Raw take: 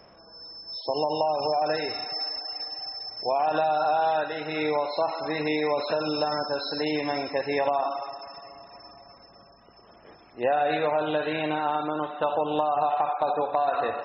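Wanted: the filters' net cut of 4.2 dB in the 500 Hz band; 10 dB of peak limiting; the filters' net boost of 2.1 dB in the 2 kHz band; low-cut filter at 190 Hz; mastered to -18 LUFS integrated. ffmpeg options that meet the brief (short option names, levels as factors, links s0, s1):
-af "highpass=190,equalizer=f=500:t=o:g=-5.5,equalizer=f=2000:t=o:g=3,volume=5.31,alimiter=limit=0.355:level=0:latency=1"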